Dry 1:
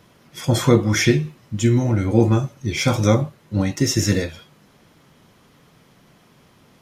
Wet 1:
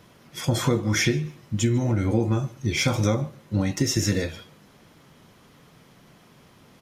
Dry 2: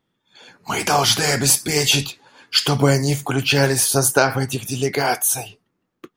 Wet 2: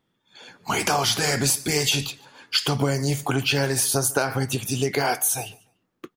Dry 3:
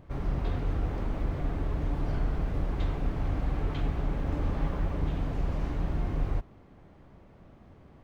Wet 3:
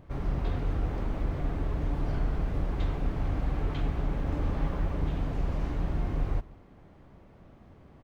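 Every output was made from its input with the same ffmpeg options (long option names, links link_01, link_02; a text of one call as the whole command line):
ffmpeg -i in.wav -filter_complex "[0:a]acompressor=threshold=-19dB:ratio=4,asplit=2[link_01][link_02];[link_02]aecho=0:1:146|292:0.0631|0.017[link_03];[link_01][link_03]amix=inputs=2:normalize=0" out.wav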